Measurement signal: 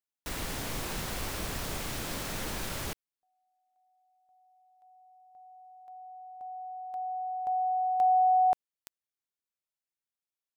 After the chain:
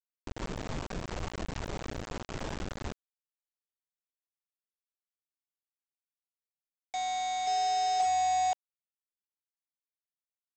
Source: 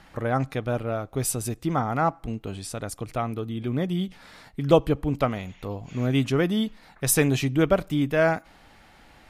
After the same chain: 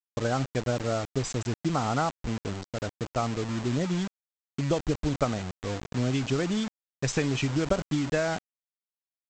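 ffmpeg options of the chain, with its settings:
-af "afftfilt=real='re*gte(hypot(re,im),0.0355)':imag='im*gte(hypot(re,im),0.0355)':win_size=1024:overlap=0.75,acompressor=threshold=0.0316:ratio=12:attack=95:release=69:knee=1:detection=peak,aresample=16000,acrusher=bits=5:mix=0:aa=0.000001,aresample=44100"

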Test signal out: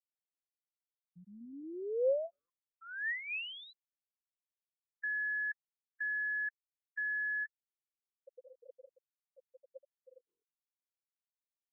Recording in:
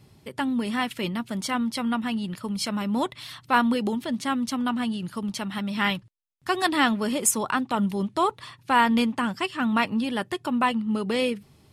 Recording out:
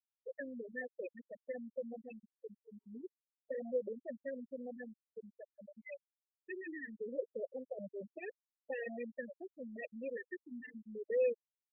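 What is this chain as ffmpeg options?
-filter_complex "[0:a]aeval=exprs='0.0944*(abs(mod(val(0)/0.0944+3,4)-2)-1)':c=same,asplit=3[s0][s1][s2];[s0]bandpass=f=530:t=q:w=8,volume=1[s3];[s1]bandpass=f=1840:t=q:w=8,volume=0.501[s4];[s2]bandpass=f=2480:t=q:w=8,volume=0.355[s5];[s3][s4][s5]amix=inputs=3:normalize=0,aemphasis=mode=reproduction:type=cd,afftfilt=real='re*gte(hypot(re,im),0.0355)':imag='im*gte(hypot(re,im),0.0355)':win_size=1024:overlap=0.75,afftfilt=real='re*(1-between(b*sr/1024,600*pow(5200/600,0.5+0.5*sin(2*PI*0.26*pts/sr))/1.41,600*pow(5200/600,0.5+0.5*sin(2*PI*0.26*pts/sr))*1.41))':imag='im*(1-between(b*sr/1024,600*pow(5200/600,0.5+0.5*sin(2*PI*0.26*pts/sr))/1.41,600*pow(5200/600,0.5+0.5*sin(2*PI*0.26*pts/sr))*1.41))':win_size=1024:overlap=0.75"

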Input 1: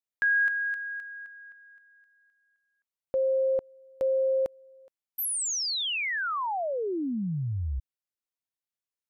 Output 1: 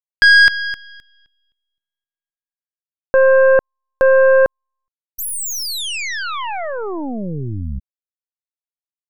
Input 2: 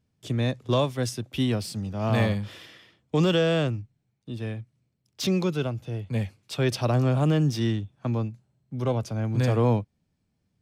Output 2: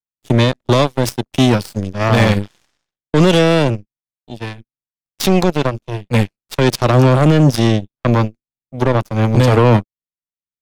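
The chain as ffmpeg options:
-af "aeval=exprs='0.266*(cos(1*acos(clip(val(0)/0.266,-1,1)))-cos(1*PI/2))+0.0299*(cos(2*acos(clip(val(0)/0.266,-1,1)))-cos(2*PI/2))+0.0106*(cos(3*acos(clip(val(0)/0.266,-1,1)))-cos(3*PI/2))+0.00422*(cos(6*acos(clip(val(0)/0.266,-1,1)))-cos(6*PI/2))+0.0335*(cos(7*acos(clip(val(0)/0.266,-1,1)))-cos(7*PI/2))':c=same,alimiter=level_in=13.3:limit=0.891:release=50:level=0:latency=1,volume=0.891"

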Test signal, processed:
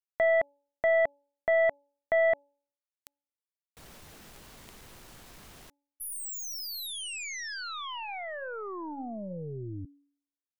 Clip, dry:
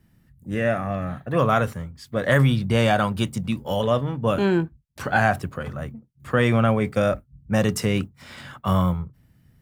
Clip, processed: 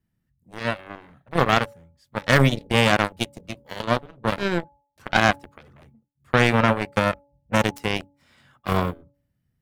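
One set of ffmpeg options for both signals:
-af "aeval=exprs='0.668*(cos(1*acos(clip(val(0)/0.668,-1,1)))-cos(1*PI/2))+0.00422*(cos(6*acos(clip(val(0)/0.668,-1,1)))-cos(6*PI/2))+0.106*(cos(7*acos(clip(val(0)/0.668,-1,1)))-cos(7*PI/2))':c=same,bandreject=f=284.2:t=h:w=4,bandreject=f=568.4:t=h:w=4,bandreject=f=852.6:t=h:w=4,volume=1.41"

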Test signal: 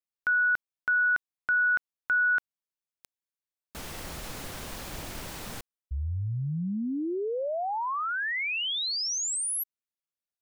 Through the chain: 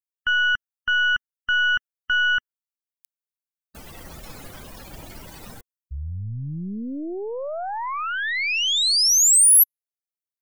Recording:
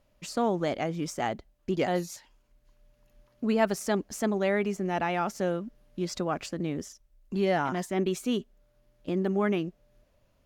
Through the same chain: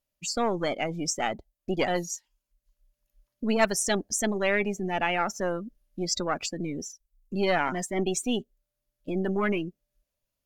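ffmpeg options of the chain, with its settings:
-af "aeval=exprs='0.299*(cos(1*acos(clip(val(0)/0.299,-1,1)))-cos(1*PI/2))+0.0299*(cos(6*acos(clip(val(0)/0.299,-1,1)))-cos(6*PI/2))':c=same,afftdn=nr=21:nf=-40,crystalizer=i=5:c=0"

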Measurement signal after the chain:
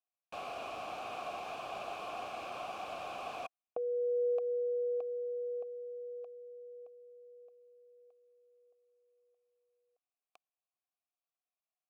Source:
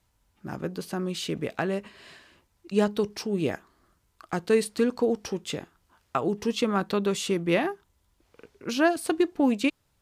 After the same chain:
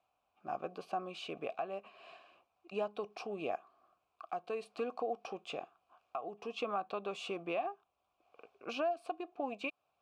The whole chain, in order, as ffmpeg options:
-filter_complex "[0:a]acompressor=threshold=0.0447:ratio=2,asplit=3[s0][s1][s2];[s0]bandpass=f=730:t=q:w=8,volume=1[s3];[s1]bandpass=f=1090:t=q:w=8,volume=0.501[s4];[s2]bandpass=f=2440:t=q:w=8,volume=0.355[s5];[s3][s4][s5]amix=inputs=3:normalize=0,alimiter=level_in=3.16:limit=0.0631:level=0:latency=1:release=491,volume=0.316,volume=2.51" -ar 44100 -c:a libvorbis -b:a 192k

